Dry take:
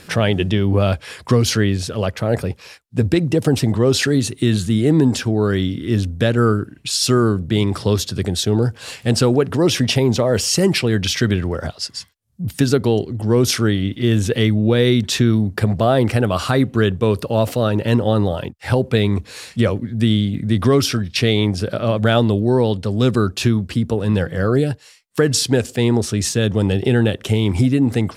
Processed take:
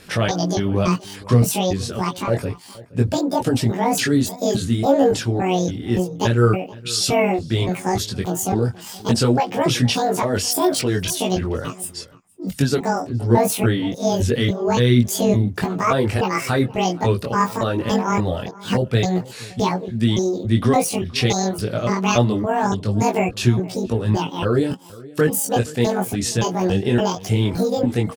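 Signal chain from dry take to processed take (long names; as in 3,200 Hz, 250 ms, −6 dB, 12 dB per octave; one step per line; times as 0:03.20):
pitch shifter gated in a rhythm +10.5 semitones, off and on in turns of 284 ms
multi-voice chorus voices 4, 0.27 Hz, delay 21 ms, depth 4.6 ms
slap from a distant wall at 81 metres, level −20 dB
level +1 dB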